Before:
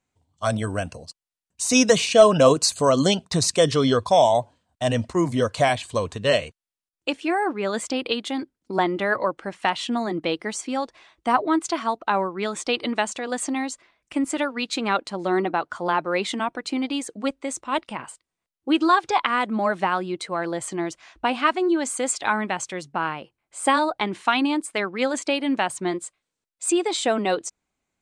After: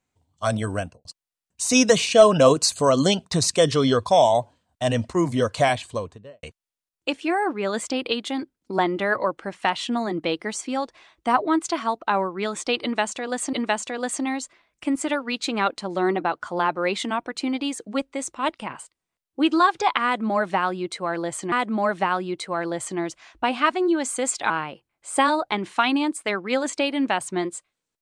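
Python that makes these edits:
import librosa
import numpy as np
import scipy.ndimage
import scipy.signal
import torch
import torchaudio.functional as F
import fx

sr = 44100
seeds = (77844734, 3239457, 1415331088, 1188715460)

y = fx.studio_fade_out(x, sr, start_s=0.76, length_s=0.29)
y = fx.studio_fade_out(y, sr, start_s=5.69, length_s=0.74)
y = fx.edit(y, sr, fx.repeat(start_s=12.82, length_s=0.71, count=2),
    fx.repeat(start_s=19.33, length_s=1.48, count=2),
    fx.cut(start_s=22.31, length_s=0.68), tone=tone)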